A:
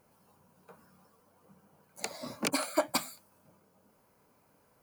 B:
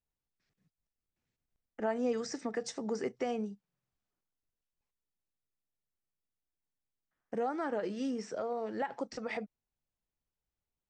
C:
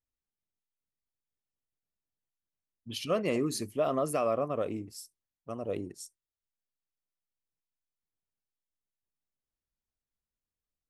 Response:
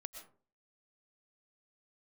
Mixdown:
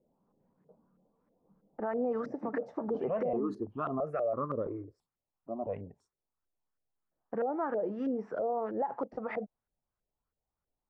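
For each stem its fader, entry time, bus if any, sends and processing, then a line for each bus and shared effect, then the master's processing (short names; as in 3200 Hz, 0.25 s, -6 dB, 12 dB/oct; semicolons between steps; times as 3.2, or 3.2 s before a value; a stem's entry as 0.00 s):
-4.5 dB, 0.00 s, no send, band-pass 250 Hz, Q 1.2
+0.5 dB, 0.00 s, no send, high shelf 6700 Hz +8.5 dB
+0.5 dB, 0.00 s, no send, step phaser 3 Hz 480–2600 Hz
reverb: off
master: LFO low-pass saw up 3.1 Hz 500–1500 Hz; limiter -24.5 dBFS, peak gain reduction 9.5 dB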